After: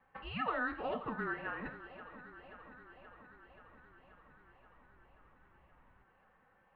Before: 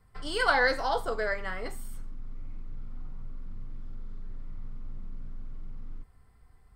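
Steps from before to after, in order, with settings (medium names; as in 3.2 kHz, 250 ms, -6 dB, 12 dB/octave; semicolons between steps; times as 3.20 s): peaking EQ 380 Hz -6.5 dB 2.6 oct; compression 5:1, threshold -38 dBFS, peak gain reduction 15 dB; thinning echo 530 ms, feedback 72%, high-pass 200 Hz, level -14 dB; mistuned SSB -240 Hz 240–2900 Hz; trim +4.5 dB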